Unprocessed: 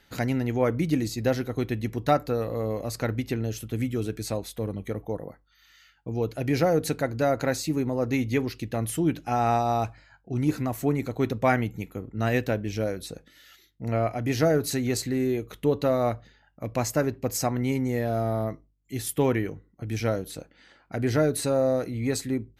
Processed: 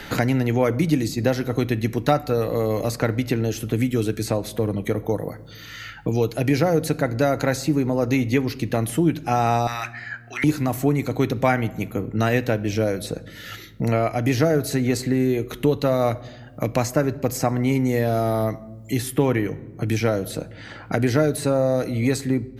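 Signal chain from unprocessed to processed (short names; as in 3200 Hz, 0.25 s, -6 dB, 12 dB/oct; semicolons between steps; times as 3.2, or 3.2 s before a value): 9.67–10.44 resonant high-pass 1800 Hz, resonance Q 4.3; reverb RT60 0.90 s, pre-delay 6 ms, DRR 15 dB; three-band squash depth 70%; gain +4.5 dB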